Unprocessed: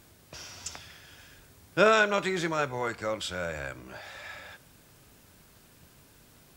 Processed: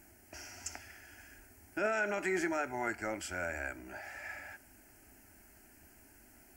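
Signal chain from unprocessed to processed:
brickwall limiter −19 dBFS, peak gain reduction 11.5 dB
phaser with its sweep stopped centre 740 Hz, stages 8

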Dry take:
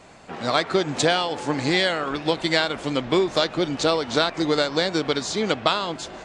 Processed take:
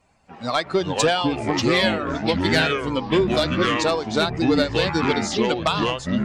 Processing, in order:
spectral dynamics exaggerated over time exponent 1.5
sine wavefolder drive 6 dB, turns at −4.5 dBFS
delay with pitch and tempo change per echo 253 ms, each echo −5 semitones, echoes 3
level −7 dB

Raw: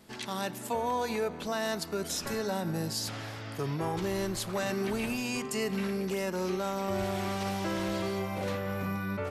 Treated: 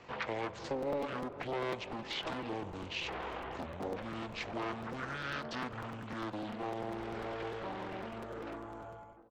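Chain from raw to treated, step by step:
fade-out on the ending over 2.81 s
high-shelf EQ 2,200 Hz −5 dB
downward compressor 3 to 1, threshold −43 dBFS, peak gain reduction 11.5 dB
on a send: bucket-brigade delay 161 ms, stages 2,048, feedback 75%, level −16.5 dB
on the sum: pitch shifter −9.5 semitones
low-pass filter 8,400 Hz
three-way crossover with the lows and the highs turned down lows −16 dB, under 390 Hz, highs −14 dB, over 3,800 Hz
regular buffer underruns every 0.10 s, samples 256, repeat, from 0:00.82
highs frequency-modulated by the lows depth 0.62 ms
level +11 dB

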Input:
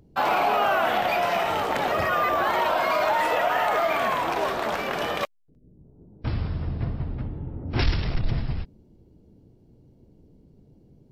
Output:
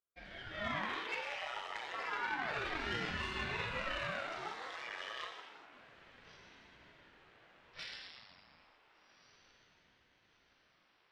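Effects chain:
automatic gain control gain up to 5 dB
soft clipping −10 dBFS, distortion −21 dB
high-pass filter 840 Hz 6 dB per octave
head-to-tape spacing loss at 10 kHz 35 dB
feedback delay with all-pass diffusion 1,458 ms, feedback 59%, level −11 dB
noise reduction from a noise print of the clip's start 10 dB
first difference
reverb whose tail is shaped and stops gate 440 ms falling, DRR −1 dB
harmonic generator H 3 −16 dB, 6 −34 dB, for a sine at −25 dBFS
ring modulator whose carrier an LFO sweeps 450 Hz, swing 90%, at 0.3 Hz
level +8.5 dB

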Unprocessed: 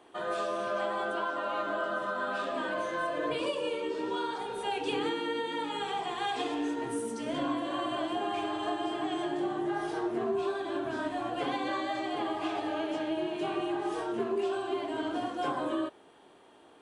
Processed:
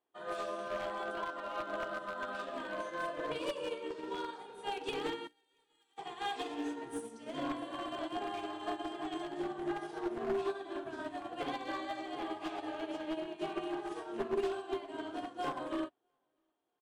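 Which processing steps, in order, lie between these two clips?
wavefolder on the positive side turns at −26.5 dBFS
0:05.27–0:05.98: first difference
mains-hum notches 60/120/180/240/300/360 Hz
repeating echo 657 ms, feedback 43%, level −20 dB
expander for the loud parts 2.5 to 1, over −48 dBFS

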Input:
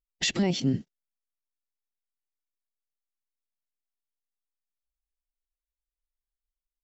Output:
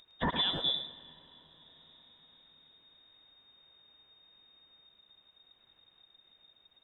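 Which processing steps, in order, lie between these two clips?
voice inversion scrambler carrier 3,700 Hz
upward compression, threshold −32 dBFS
high-shelf EQ 2,900 Hz −11.5 dB
tape delay 107 ms, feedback 38%, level −5 dB, low-pass 2,500 Hz
on a send at −20 dB: convolution reverb RT60 5.4 s, pre-delay 120 ms

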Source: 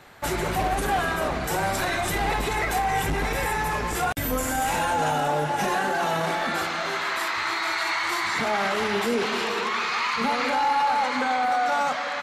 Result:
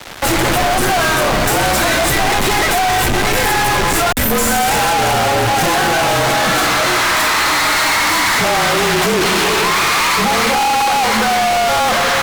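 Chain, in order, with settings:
fuzz pedal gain 43 dB, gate −46 dBFS
frequency shifter −35 Hz

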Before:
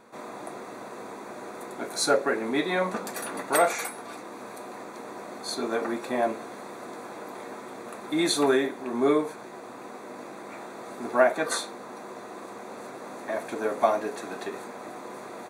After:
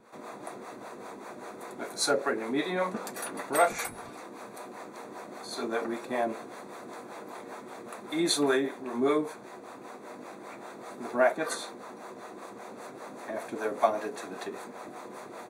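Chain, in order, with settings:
0:03.69–0:04.10: sub-octave generator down 1 octave, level −1 dB
two-band tremolo in antiphase 5.1 Hz, depth 70%, crossover 440 Hz

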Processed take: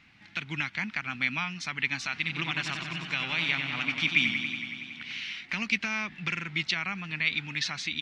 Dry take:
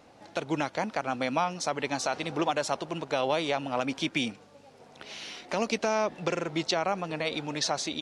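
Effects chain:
drawn EQ curve 200 Hz 0 dB, 540 Hz −25 dB, 2,200 Hz +10 dB, 9,500 Hz −14 dB
0:02.14–0:05.20: feedback echo with a swinging delay time 93 ms, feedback 79%, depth 68 cents, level −7 dB

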